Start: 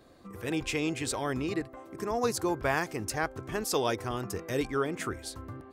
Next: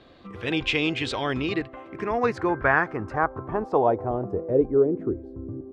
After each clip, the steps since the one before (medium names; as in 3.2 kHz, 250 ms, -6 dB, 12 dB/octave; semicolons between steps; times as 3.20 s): low-pass sweep 3.3 kHz -> 360 Hz, 1.52–5.13 s; trim +4.5 dB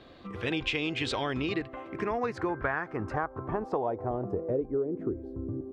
compression 6:1, threshold -27 dBFS, peak gain reduction 12 dB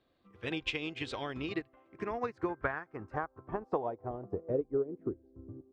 upward expansion 2.5:1, over -40 dBFS